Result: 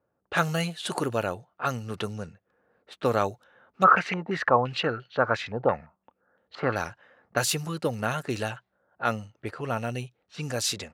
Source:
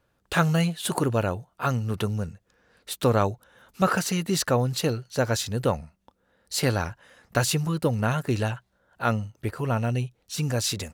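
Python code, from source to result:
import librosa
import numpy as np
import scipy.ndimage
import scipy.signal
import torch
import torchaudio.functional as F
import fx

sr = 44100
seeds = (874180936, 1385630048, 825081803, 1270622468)

y = fx.env_lowpass(x, sr, base_hz=880.0, full_db=-21.5)
y = scipy.signal.sosfilt(scipy.signal.butter(2, 79.0, 'highpass', fs=sr, output='sos'), y)
y = fx.low_shelf(y, sr, hz=250.0, db=-10.0)
y = fx.notch(y, sr, hz=980.0, q=15.0)
y = fx.filter_held_lowpass(y, sr, hz=5.8, low_hz=840.0, high_hz=3300.0, at=(3.83, 6.75), fade=0.02)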